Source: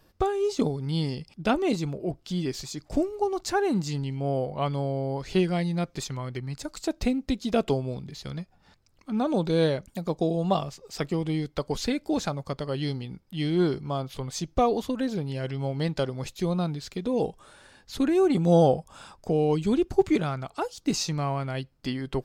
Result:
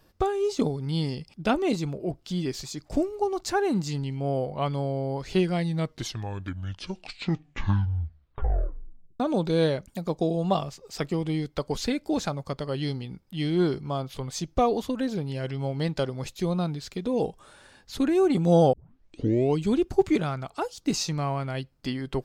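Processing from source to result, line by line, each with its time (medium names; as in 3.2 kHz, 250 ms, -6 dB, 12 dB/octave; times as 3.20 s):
5.56 s: tape stop 3.64 s
18.73 s: tape start 0.81 s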